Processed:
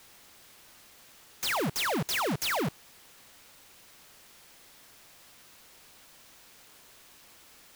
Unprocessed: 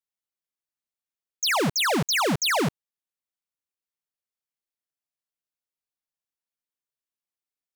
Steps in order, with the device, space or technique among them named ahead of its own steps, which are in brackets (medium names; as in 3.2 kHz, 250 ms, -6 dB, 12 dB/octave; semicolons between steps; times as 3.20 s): early CD player with a faulty converter (jump at every zero crossing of -37.5 dBFS; sampling jitter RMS 0.027 ms); trim -7 dB